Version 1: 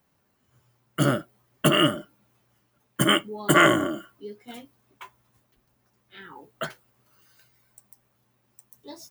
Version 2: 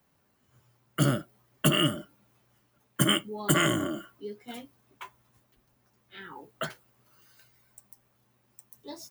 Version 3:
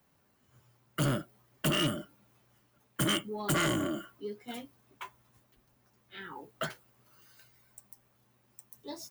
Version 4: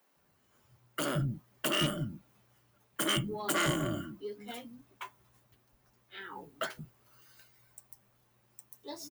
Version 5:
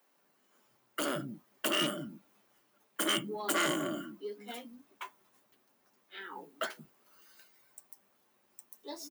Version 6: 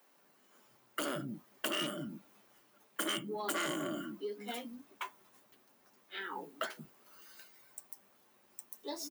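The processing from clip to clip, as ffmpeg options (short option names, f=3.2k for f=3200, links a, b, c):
-filter_complex "[0:a]acrossover=split=240|3000[a][b][c];[b]acompressor=threshold=-31dB:ratio=2.5[d];[a][d][c]amix=inputs=3:normalize=0"
-af "asoftclip=type=tanh:threshold=-24dB"
-filter_complex "[0:a]acrossover=split=240[a][b];[a]adelay=160[c];[c][b]amix=inputs=2:normalize=0"
-af "highpass=f=210:w=0.5412,highpass=f=210:w=1.3066"
-af "acompressor=threshold=-41dB:ratio=2.5,volume=4dB"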